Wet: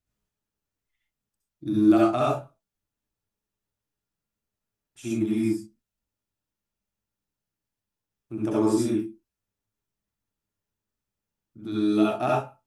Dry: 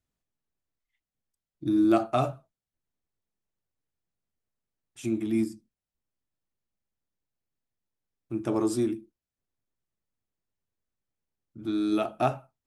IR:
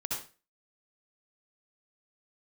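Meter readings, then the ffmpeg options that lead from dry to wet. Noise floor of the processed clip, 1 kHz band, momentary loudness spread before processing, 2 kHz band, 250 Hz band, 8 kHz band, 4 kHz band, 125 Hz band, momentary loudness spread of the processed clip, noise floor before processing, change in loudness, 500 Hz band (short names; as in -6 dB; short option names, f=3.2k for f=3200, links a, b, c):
under -85 dBFS, +2.5 dB, 13 LU, +3.5 dB, +4.0 dB, +3.0 dB, +3.0 dB, +2.5 dB, 19 LU, under -85 dBFS, +3.5 dB, +3.5 dB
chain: -filter_complex "[1:a]atrim=start_sample=2205,atrim=end_sample=6174[a];[0:a][a]afir=irnorm=-1:irlink=0"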